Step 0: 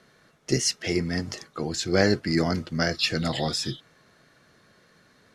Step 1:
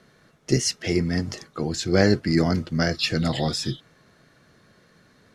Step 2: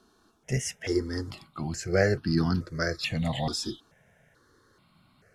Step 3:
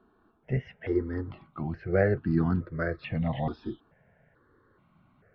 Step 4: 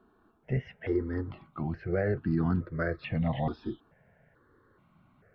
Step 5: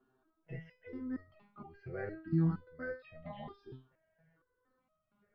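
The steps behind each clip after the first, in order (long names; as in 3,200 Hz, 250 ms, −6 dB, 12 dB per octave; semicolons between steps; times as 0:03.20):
low-shelf EQ 350 Hz +5.5 dB
step-sequenced phaser 2.3 Hz 550–2,100 Hz; level −2 dB
Gaussian smoothing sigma 3.7 samples
brickwall limiter −19 dBFS, peak gain reduction 8 dB
step-sequenced resonator 4.3 Hz 130–630 Hz; level +2 dB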